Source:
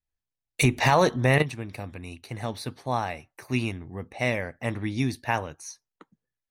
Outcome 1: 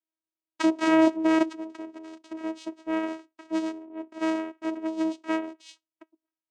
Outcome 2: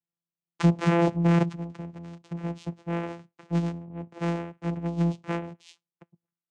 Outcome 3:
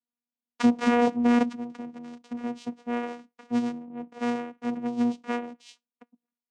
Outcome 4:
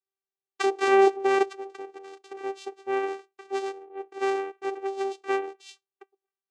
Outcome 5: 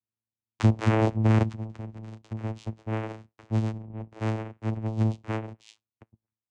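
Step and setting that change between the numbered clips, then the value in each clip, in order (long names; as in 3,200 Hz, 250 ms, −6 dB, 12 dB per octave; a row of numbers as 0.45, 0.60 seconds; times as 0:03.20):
channel vocoder, frequency: 320, 170, 240, 390, 110 Hertz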